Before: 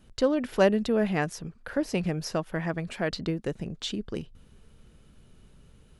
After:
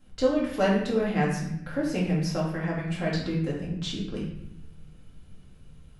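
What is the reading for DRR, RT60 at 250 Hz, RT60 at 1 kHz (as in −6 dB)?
−6.0 dB, 1.4 s, 0.75 s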